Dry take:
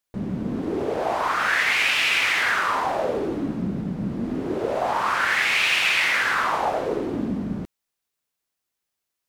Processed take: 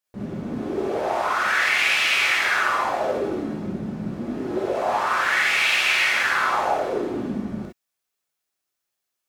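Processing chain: low shelf 97 Hz -6.5 dB; non-linear reverb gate 80 ms rising, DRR -4 dB; gain -4.5 dB

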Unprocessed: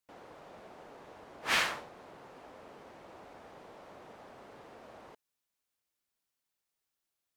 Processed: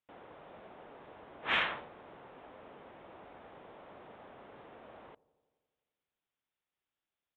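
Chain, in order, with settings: downsampling 8000 Hz; added harmonics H 5 -36 dB, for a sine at -15 dBFS; dark delay 86 ms, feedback 72%, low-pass 700 Hz, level -20 dB; gain -1.5 dB

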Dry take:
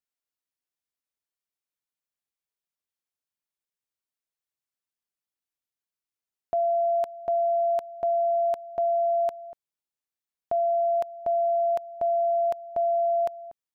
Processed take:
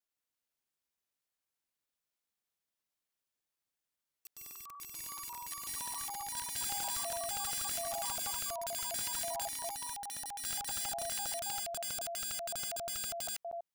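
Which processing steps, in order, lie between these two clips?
slices in reverse order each 81 ms, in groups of 3; wrapped overs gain 33 dB; echoes that change speed 0.155 s, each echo +3 st, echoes 3

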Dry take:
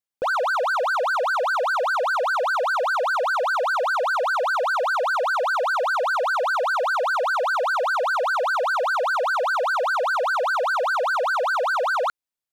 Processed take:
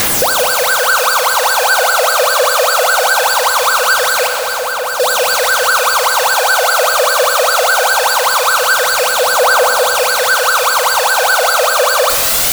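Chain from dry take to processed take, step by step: infinite clipping; phaser 0.21 Hz, delay 1.8 ms, feedback 45%; on a send: thin delay 0.198 s, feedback 82%, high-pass 4900 Hz, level -4.5 dB; 4.27–5 on the sum: overloaded stage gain 30.5 dB; Schroeder reverb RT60 1.9 s, combs from 30 ms, DRR 6 dB; in parallel at +2 dB: limiter -20.5 dBFS, peak gain reduction 11 dB; on the sum: gain +5 dB

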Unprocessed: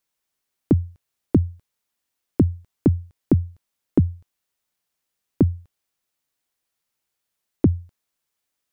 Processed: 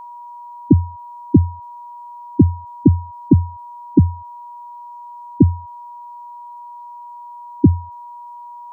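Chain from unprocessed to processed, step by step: spectral contrast raised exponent 2; whine 960 Hz -39 dBFS; gain +6 dB

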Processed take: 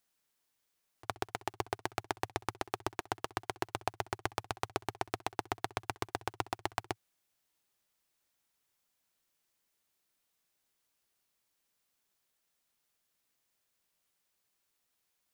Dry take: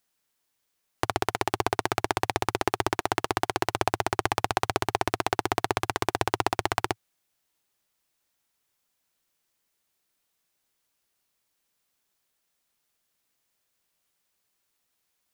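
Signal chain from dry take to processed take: auto swell 0.119 s; gain -3.5 dB

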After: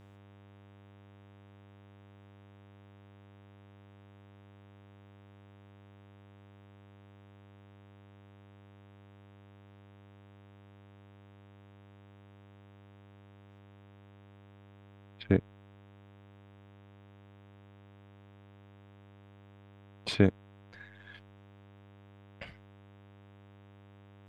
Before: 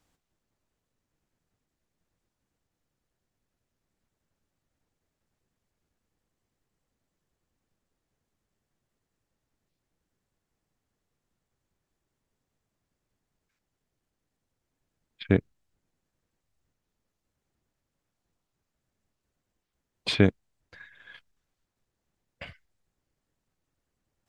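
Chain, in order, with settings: dynamic EQ 3000 Hz, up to -5 dB, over -44 dBFS, Q 0.75; buzz 100 Hz, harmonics 38, -53 dBFS -6 dB/oct; gain -3 dB

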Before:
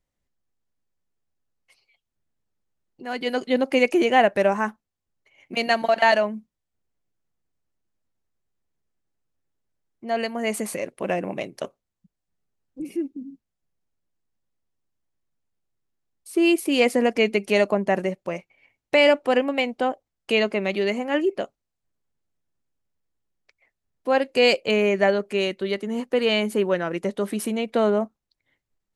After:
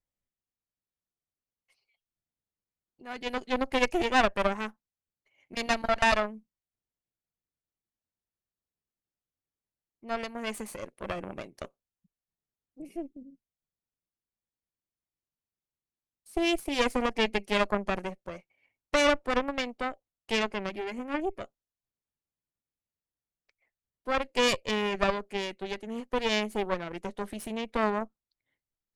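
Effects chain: 20.69–21.41 ten-band EQ 125 Hz -11 dB, 250 Hz +6 dB, 500 Hz -3 dB, 1000 Hz -3 dB, 4000 Hz -11 dB; added harmonics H 3 -24 dB, 4 -9 dB, 7 -31 dB, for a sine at -5 dBFS; gain -7 dB

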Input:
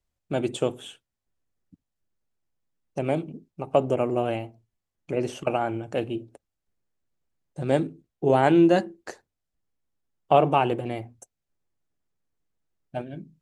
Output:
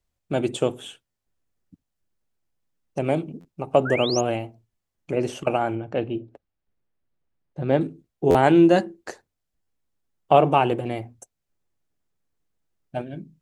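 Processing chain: 3.85–4.21 painted sound rise 1300–7000 Hz -32 dBFS; 5.75–7.81 air absorption 210 m; stuck buffer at 1.1/3.4/8.3/9.62, samples 512, times 3; gain +2.5 dB

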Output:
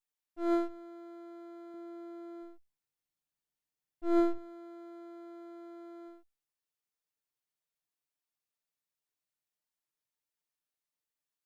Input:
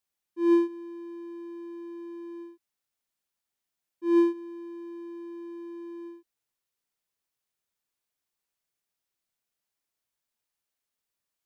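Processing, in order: minimum comb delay 6.6 ms; 1.74–4.38 low shelf 230 Hz +9 dB; resonator 900 Hz, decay 0.27 s, mix 50%

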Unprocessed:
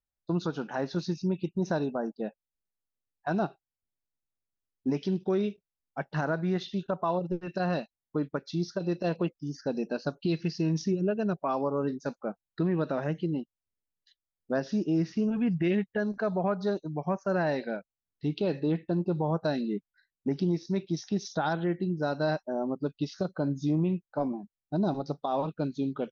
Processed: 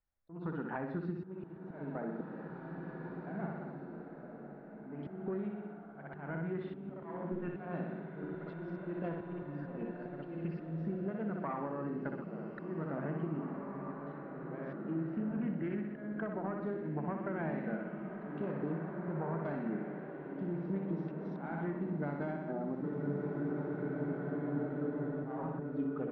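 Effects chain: self-modulated delay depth 0.11 ms; LPF 2000 Hz 24 dB/oct; notches 60/120/180/240/300/360/420/480/540 Hz; flutter echo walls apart 10.6 m, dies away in 0.61 s; compressor 16:1, threshold -36 dBFS, peak gain reduction 17 dB; auto swell 0.207 s; dynamic EQ 590 Hz, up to -5 dB, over -53 dBFS, Q 1.5; spectral freeze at 22.87, 2.35 s; bloom reverb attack 2.34 s, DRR 4 dB; gain +3.5 dB

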